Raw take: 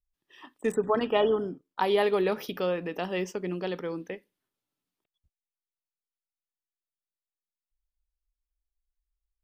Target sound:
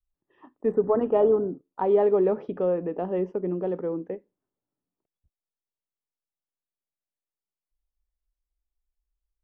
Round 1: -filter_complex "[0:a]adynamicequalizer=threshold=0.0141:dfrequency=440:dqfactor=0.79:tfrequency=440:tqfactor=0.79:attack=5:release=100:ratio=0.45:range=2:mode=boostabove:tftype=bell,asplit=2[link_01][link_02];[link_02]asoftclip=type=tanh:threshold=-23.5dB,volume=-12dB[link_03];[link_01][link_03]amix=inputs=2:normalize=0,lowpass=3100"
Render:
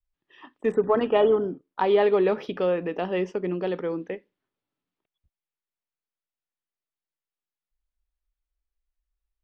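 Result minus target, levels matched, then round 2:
4,000 Hz band +19.0 dB
-filter_complex "[0:a]adynamicequalizer=threshold=0.0141:dfrequency=440:dqfactor=0.79:tfrequency=440:tqfactor=0.79:attack=5:release=100:ratio=0.45:range=2:mode=boostabove:tftype=bell,asplit=2[link_01][link_02];[link_02]asoftclip=type=tanh:threshold=-23.5dB,volume=-12dB[link_03];[link_01][link_03]amix=inputs=2:normalize=0,lowpass=860"

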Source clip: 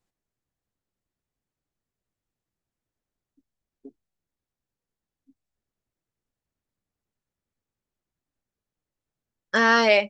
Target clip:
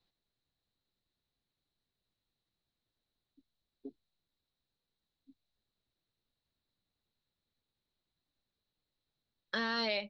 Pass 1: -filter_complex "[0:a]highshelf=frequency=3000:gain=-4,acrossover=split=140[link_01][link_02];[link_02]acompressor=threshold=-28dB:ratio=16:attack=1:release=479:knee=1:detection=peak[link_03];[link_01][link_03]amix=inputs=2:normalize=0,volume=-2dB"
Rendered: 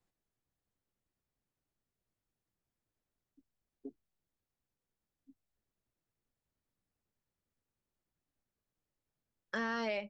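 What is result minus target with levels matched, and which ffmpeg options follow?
4,000 Hz band −8.5 dB
-filter_complex "[0:a]highshelf=frequency=3000:gain=-4,acrossover=split=140[link_01][link_02];[link_02]acompressor=threshold=-28dB:ratio=16:attack=1:release=479:knee=1:detection=peak,lowpass=frequency=4000:width_type=q:width=9.3[link_03];[link_01][link_03]amix=inputs=2:normalize=0,volume=-2dB"

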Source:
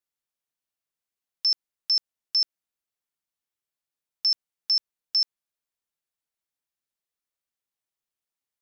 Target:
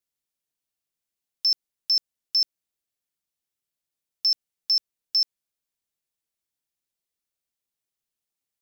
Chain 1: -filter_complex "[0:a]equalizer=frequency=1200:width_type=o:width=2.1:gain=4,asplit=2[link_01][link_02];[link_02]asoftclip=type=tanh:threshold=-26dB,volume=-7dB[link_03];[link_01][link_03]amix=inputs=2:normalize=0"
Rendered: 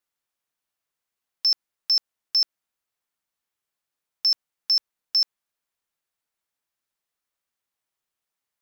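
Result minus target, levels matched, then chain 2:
1,000 Hz band +8.5 dB
-filter_complex "[0:a]equalizer=frequency=1200:width_type=o:width=2.1:gain=-6,asplit=2[link_01][link_02];[link_02]asoftclip=type=tanh:threshold=-26dB,volume=-7dB[link_03];[link_01][link_03]amix=inputs=2:normalize=0"

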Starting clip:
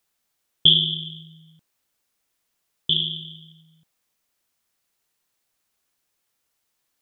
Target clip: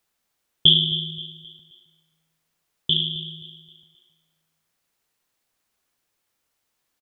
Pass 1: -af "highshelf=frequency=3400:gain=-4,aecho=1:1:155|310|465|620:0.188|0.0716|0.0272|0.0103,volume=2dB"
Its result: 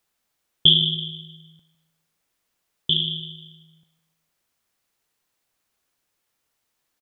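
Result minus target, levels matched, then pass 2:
echo 109 ms early
-af "highshelf=frequency=3400:gain=-4,aecho=1:1:264|528|792|1056:0.188|0.0716|0.0272|0.0103,volume=2dB"

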